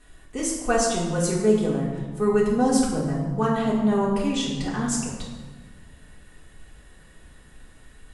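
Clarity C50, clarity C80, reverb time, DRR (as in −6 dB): 3.0 dB, 5.0 dB, 1.4 s, −6.0 dB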